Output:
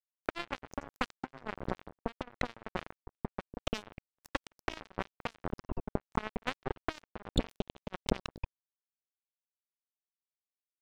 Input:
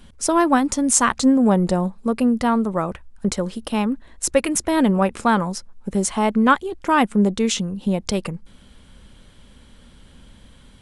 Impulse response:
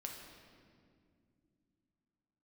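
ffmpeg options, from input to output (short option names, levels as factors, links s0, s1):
-filter_complex "[0:a]bandreject=f=960:w=7.4,afftfilt=real='re*gte(hypot(re,im),0.0708)':imag='im*gte(hypot(re,im),0.0708)':win_size=1024:overlap=0.75,lowpass=f=3800:w=0.5412,lowpass=f=3800:w=1.3066,bandreject=f=60:t=h:w=6,bandreject=f=120:t=h:w=6,bandreject=f=180:t=h:w=6,asplit=2[s0][s1];[s1]asplit=6[s2][s3][s4][s5][s6][s7];[s2]adelay=89,afreqshift=-120,volume=0.133[s8];[s3]adelay=178,afreqshift=-240,volume=0.0804[s9];[s4]adelay=267,afreqshift=-360,volume=0.0479[s10];[s5]adelay=356,afreqshift=-480,volume=0.0288[s11];[s6]adelay=445,afreqshift=-600,volume=0.0174[s12];[s7]adelay=534,afreqshift=-720,volume=0.0104[s13];[s8][s9][s10][s11][s12][s13]amix=inputs=6:normalize=0[s14];[s0][s14]amix=inputs=2:normalize=0,acompressor=threshold=0.126:ratio=12,acrossover=split=790[s15][s16];[s15]alimiter=limit=0.0794:level=0:latency=1:release=490[s17];[s17][s16]amix=inputs=2:normalize=0,acrossover=split=370|990[s18][s19][s20];[s18]acompressor=threshold=0.0316:ratio=4[s21];[s19]acompressor=threshold=0.00562:ratio=4[s22];[s20]acompressor=threshold=0.00794:ratio=4[s23];[s21][s22][s23]amix=inputs=3:normalize=0,asubboost=boost=2.5:cutoff=91,asoftclip=type=tanh:threshold=0.0708,acrusher=bits=3:mix=0:aa=0.5,volume=7.08"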